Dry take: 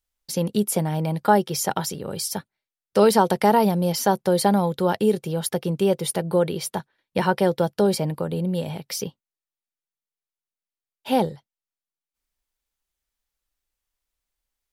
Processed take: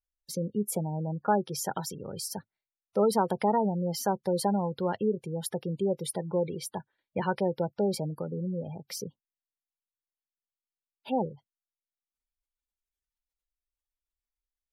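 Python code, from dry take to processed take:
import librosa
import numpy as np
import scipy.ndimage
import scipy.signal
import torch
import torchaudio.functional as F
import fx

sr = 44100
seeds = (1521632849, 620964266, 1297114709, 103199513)

y = fx.spec_gate(x, sr, threshold_db=-20, keep='strong')
y = fx.dynamic_eq(y, sr, hz=110.0, q=4.3, threshold_db=-50.0, ratio=4.0, max_db=4)
y = y * 10.0 ** (-8.0 / 20.0)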